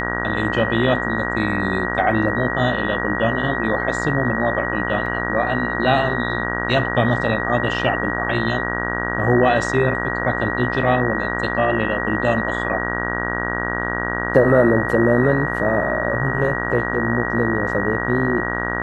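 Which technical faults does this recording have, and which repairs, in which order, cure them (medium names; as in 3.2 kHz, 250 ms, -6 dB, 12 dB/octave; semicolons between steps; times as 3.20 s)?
buzz 60 Hz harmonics 33 -25 dBFS
whine 1.9 kHz -25 dBFS
5.06 s: dropout 3.4 ms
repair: band-stop 1.9 kHz, Q 30; de-hum 60 Hz, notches 33; interpolate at 5.06 s, 3.4 ms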